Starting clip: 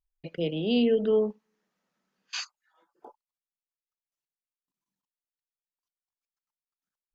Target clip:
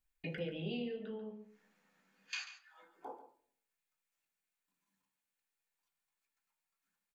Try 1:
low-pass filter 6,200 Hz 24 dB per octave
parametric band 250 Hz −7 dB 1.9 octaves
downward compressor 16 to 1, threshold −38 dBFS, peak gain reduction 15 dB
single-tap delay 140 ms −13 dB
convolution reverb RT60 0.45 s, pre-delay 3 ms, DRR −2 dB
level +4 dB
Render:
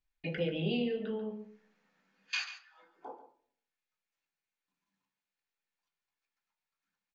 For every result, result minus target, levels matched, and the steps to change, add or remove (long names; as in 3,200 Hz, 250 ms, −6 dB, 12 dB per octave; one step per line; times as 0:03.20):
downward compressor: peak gain reduction −7.5 dB; 8,000 Hz band −4.5 dB
change: downward compressor 16 to 1, threshold −46 dBFS, peak gain reduction 22.5 dB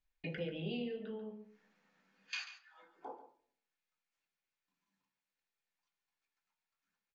8,000 Hz band −3.5 dB
remove: low-pass filter 6,200 Hz 24 dB per octave